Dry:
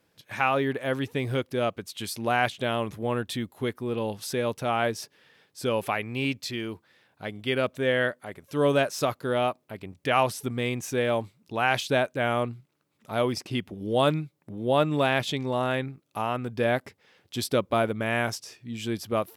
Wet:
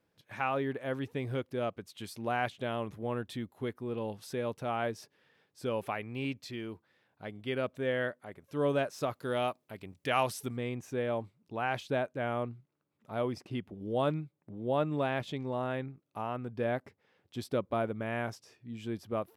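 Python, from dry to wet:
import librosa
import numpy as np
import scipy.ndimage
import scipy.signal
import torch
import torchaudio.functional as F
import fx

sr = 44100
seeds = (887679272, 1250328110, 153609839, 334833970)

y = fx.high_shelf(x, sr, hz=2400.0, db=fx.steps((0.0, -7.5), (9.13, 2.0), (10.56, -11.5)))
y = F.gain(torch.from_numpy(y), -6.5).numpy()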